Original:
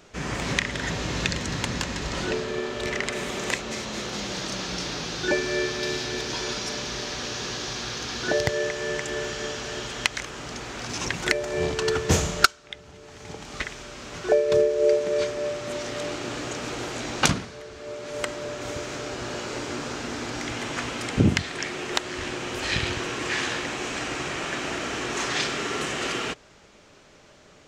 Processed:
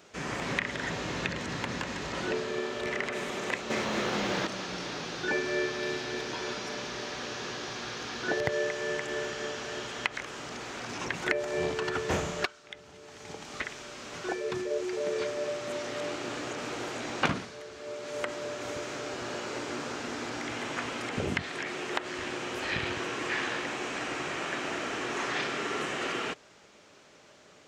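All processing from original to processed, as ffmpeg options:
ffmpeg -i in.wav -filter_complex "[0:a]asettb=1/sr,asplit=3[link_01][link_02][link_03];[link_01]atrim=end=3.704[link_04];[link_02]atrim=start=3.7:end=4.47,asetpts=PTS-STARTPTS,afade=type=in:duration=0.004:curve=qsin,afade=type=out:start_time=0.766:duration=0.004:curve=qsin,acontrast=83,acrusher=bits=7:mode=log:mix=0:aa=0.000001[link_05];[link_03]atrim=start=4.466[link_06];[link_04][link_05]acrossfade=duration=0.004:curve1=hsin:curve2=qsin[link_07];[link_07][link_06]acrossfade=duration=0.004:curve1=qsin:curve2=hsin,acrossover=split=2800[link_08][link_09];[link_09]acompressor=threshold=-40dB:ratio=4:attack=1:release=60[link_10];[link_08][link_10]amix=inputs=2:normalize=0,highpass=frequency=210:poles=1,afftfilt=real='re*lt(hypot(re,im),0.501)':imag='im*lt(hypot(re,im),0.501)':win_size=1024:overlap=0.75,volume=-2.5dB" out.wav

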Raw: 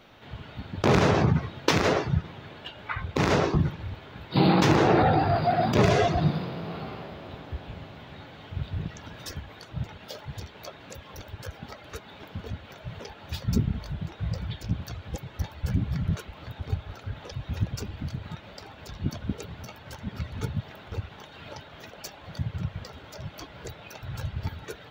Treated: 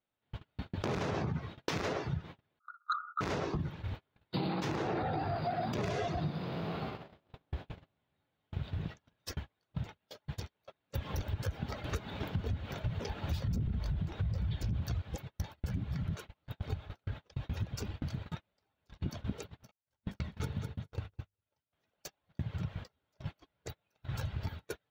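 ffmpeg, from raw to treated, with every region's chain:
ffmpeg -i in.wav -filter_complex "[0:a]asettb=1/sr,asplit=3[link_01][link_02][link_03];[link_01]atrim=end=2.594[link_04];[link_02]atrim=start=2.59:end=3.21,asetpts=PTS-STARTPTS,afade=type=in:duration=0.004:curve=qsin,afade=type=out:start_time=0.616:duration=0.004:curve=qsin,asuperpass=centerf=1300:order=20:qfactor=4.7,aeval=exprs='0.211*sin(PI/2*5.01*val(0)/0.211)':channel_layout=same[link_05];[link_03]atrim=start=3.206[link_06];[link_04][link_05]acrossfade=duration=0.004:curve1=hsin:curve2=qsin[link_07];[link_07][link_06]acrossfade=duration=0.004:curve1=qsin:curve2=hsin,asettb=1/sr,asplit=3[link_08][link_09][link_10];[link_08]atrim=end=10.934[link_11];[link_09]atrim=start=10.93:end=15.02,asetpts=PTS-STARTPTS,afade=type=in:duration=0.004:curve=qsin,afade=type=out:start_time=4.086:duration=0.004:curve=qsin,lowshelf=frequency=230:gain=11.5,acontrast=45[link_12];[link_10]atrim=start=15.016[link_13];[link_11][link_12]acrossfade=duration=0.004:curve1=hsin:curve2=qsin[link_14];[link_14][link_13]acrossfade=duration=0.004:curve1=qsin:curve2=hsin,asettb=1/sr,asplit=3[link_15][link_16][link_17];[link_15]atrim=end=19.714[link_18];[link_16]atrim=start=19.71:end=21.73,asetpts=PTS-STARTPTS,afade=type=in:duration=0.004:curve=qsin,afade=type=out:start_time=2.016:duration=0.004:curve=qsin,agate=range=-33dB:threshold=-34dB:ratio=3:release=100:detection=peak,bandreject=frequency=50:width_type=h:width=6,bandreject=frequency=100:width_type=h:width=6,bandreject=frequency=150:width_type=h:width=6,bandreject=frequency=200:width_type=h:width=6,bandreject=frequency=250:width_type=h:width=6,bandreject=frequency=300:width_type=h:width=6,bandreject=frequency=350:width_type=h:width=6,bandreject=frequency=400:width_type=h:width=6,bandreject=frequency=450:width_type=h:width=6,aecho=1:1:204|408|612:0.501|0.0902|0.0162,atrim=end_sample=89082[link_19];[link_17]atrim=start=21.726[link_20];[link_18][link_19]acrossfade=duration=0.004:curve1=hsin:curve2=qsin[link_21];[link_21][link_20]acrossfade=duration=0.004:curve1=qsin:curve2=hsin,agate=range=-38dB:threshold=-36dB:ratio=16:detection=peak,alimiter=limit=-14.5dB:level=0:latency=1:release=40,acompressor=threshold=-35dB:ratio=4,volume=1dB" out.wav

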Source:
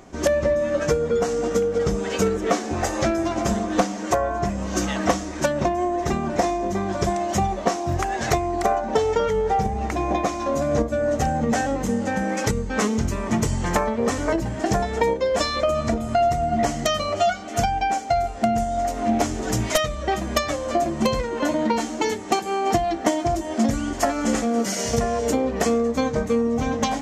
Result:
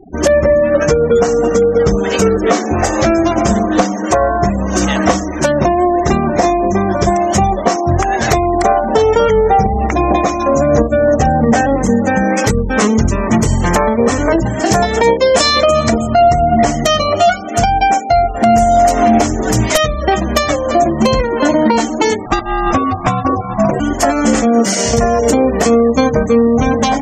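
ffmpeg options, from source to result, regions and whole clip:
ffmpeg -i in.wav -filter_complex "[0:a]asettb=1/sr,asplit=3[link_01][link_02][link_03];[link_01]atrim=end=11.154[link_04];[link_02]atrim=start=11.15:end=11.78,asetpts=PTS-STARTPTS,afade=type=in:duration=0.004:curve=qsin,afade=type=out:start_time=0.626:duration=0.004:curve=qsin,highshelf=frequency=3500:gain=-4,bandreject=frequency=1400:width=24[link_05];[link_03]atrim=start=11.776[link_06];[link_04][link_05]acrossfade=duration=0.004:curve1=hsin:curve2=qsin[link_07];[link_07][link_06]acrossfade=duration=0.004:curve1=qsin:curve2=hsin,asettb=1/sr,asplit=3[link_08][link_09][link_10];[link_08]atrim=end=14.464[link_11];[link_09]atrim=start=14.46:end=16.07,asetpts=PTS-STARTPTS,afade=type=in:duration=0.004:curve=qsin,afade=type=out:start_time=1.606:duration=0.004:curve=qsin,highpass=68,highshelf=frequency=2100:gain=6.5[link_12];[link_10]atrim=start=16.066[link_13];[link_11][link_12]acrossfade=duration=0.004:curve1=hsin:curve2=qsin[link_14];[link_14][link_13]acrossfade=duration=0.004:curve1=qsin:curve2=hsin,asettb=1/sr,asplit=3[link_15][link_16][link_17];[link_15]atrim=end=18.344[link_18];[link_16]atrim=start=18.34:end=19.19,asetpts=PTS-STARTPTS,afade=type=in:duration=0.004:curve=qsin,afade=type=out:start_time=0.846:duration=0.004:curve=qsin,equalizer=frequency=150:width=0.32:gain=-3.5,acontrast=54,highpass=44[link_19];[link_17]atrim=start=19.186[link_20];[link_18][link_19]acrossfade=duration=0.004:curve1=hsin:curve2=qsin[link_21];[link_21][link_20]acrossfade=duration=0.004:curve1=qsin:curve2=hsin,asettb=1/sr,asplit=3[link_22][link_23][link_24];[link_22]atrim=end=22.264[link_25];[link_23]atrim=start=22.26:end=23.8,asetpts=PTS-STARTPTS,afade=type=in:duration=0.004:curve=qsin,afade=type=out:start_time=1.536:duration=0.004:curve=qsin,highshelf=frequency=4700:gain=-6.5,aeval=exprs='val(0)*sin(2*PI*430*n/s)':channel_layout=same,volume=15.5dB,asoftclip=hard,volume=-15.5dB[link_26];[link_24]atrim=start=23.796[link_27];[link_25][link_26]acrossfade=duration=0.004:curve1=hsin:curve2=qsin[link_28];[link_28][link_27]acrossfade=duration=0.004:curve1=qsin:curve2=hsin,afftfilt=real='re*gte(hypot(re,im),0.0178)':imag='im*gte(hypot(re,im),0.0178)':win_size=1024:overlap=0.75,alimiter=level_in=12dB:limit=-1dB:release=50:level=0:latency=1,volume=-1dB" out.wav

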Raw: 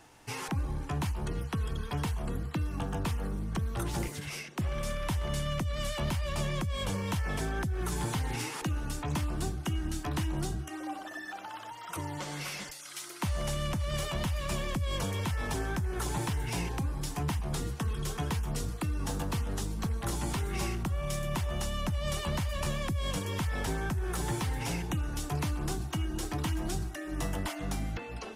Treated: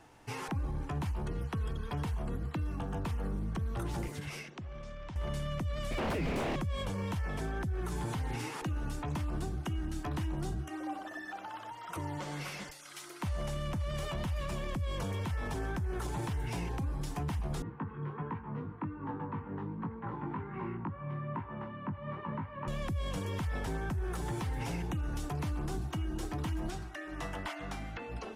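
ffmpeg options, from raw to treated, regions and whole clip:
ffmpeg -i in.wav -filter_complex "[0:a]asettb=1/sr,asplit=3[link_01][link_02][link_03];[link_01]atrim=end=4.504[link_04];[link_02]atrim=start=4.5:end=5.16,asetpts=PTS-STARTPTS,afade=type=in:duration=0.004:curve=qsin,afade=type=out:start_time=0.656:duration=0.004:curve=qsin,lowpass=frequency=6700:width=0.5412,lowpass=frequency=6700:width=1.3066,acompressor=threshold=-39dB:ratio=16:attack=3.2:release=140:knee=1:detection=peak[link_05];[link_03]atrim=start=5.156[link_06];[link_04][link_05]acrossfade=duration=0.004:curve1=hsin:curve2=qsin[link_07];[link_07][link_06]acrossfade=duration=0.004:curve1=qsin:curve2=hsin,asettb=1/sr,asplit=3[link_08][link_09][link_10];[link_08]atrim=end=5.914[link_11];[link_09]atrim=start=5.91:end=6.56,asetpts=PTS-STARTPTS,afade=type=in:duration=0.004:curve=qsin,afade=type=out:start_time=0.646:duration=0.004:curve=qsin,lowshelf=frequency=470:width_type=q:width=1.5:gain=12,aeval=exprs='val(0)+0.0126*sin(2*PI*2300*n/s)':channel_layout=same,aeval=exprs='0.0473*(abs(mod(val(0)/0.0473+3,4)-2)-1)':channel_layout=same[link_12];[link_10]atrim=start=6.556[link_13];[link_11][link_12]acrossfade=duration=0.004:curve1=hsin:curve2=qsin[link_14];[link_14][link_13]acrossfade=duration=0.004:curve1=qsin:curve2=hsin,asettb=1/sr,asplit=3[link_15][link_16][link_17];[link_15]atrim=end=17.624[link_18];[link_16]atrim=start=17.62:end=22.68,asetpts=PTS-STARTPTS,afade=type=in:duration=0.004:curve=qsin,afade=type=out:start_time=5.056:duration=0.004:curve=qsin,flanger=delay=18:depth=2.1:speed=1.3,highpass=frequency=110:width=0.5412,highpass=frequency=110:width=1.3066,equalizer=frequency=260:width_type=q:width=4:gain=4,equalizer=frequency=670:width_type=q:width=4:gain=-10,equalizer=frequency=960:width_type=q:width=4:gain=9,lowpass=frequency=2000:width=0.5412,lowpass=frequency=2000:width=1.3066[link_19];[link_17]atrim=start=22.676[link_20];[link_18][link_19]acrossfade=duration=0.004:curve1=hsin:curve2=qsin[link_21];[link_21][link_20]acrossfade=duration=0.004:curve1=qsin:curve2=hsin,asettb=1/sr,asplit=3[link_22][link_23][link_24];[link_22]atrim=end=26.704[link_25];[link_23]atrim=start=26.7:end=28,asetpts=PTS-STARTPTS,afade=type=in:duration=0.004:curve=qsin,afade=type=out:start_time=1.296:duration=0.004:curve=qsin,lowpass=frequency=1900:poles=1,tiltshelf=frequency=800:gain=-8.5[link_26];[link_24]atrim=start=27.996[link_27];[link_25][link_26]acrossfade=duration=0.004:curve1=hsin:curve2=qsin[link_28];[link_28][link_27]acrossfade=duration=0.004:curve1=qsin:curve2=hsin,highshelf=frequency=2700:gain=-8,alimiter=level_in=4dB:limit=-24dB:level=0:latency=1:release=44,volume=-4dB" out.wav

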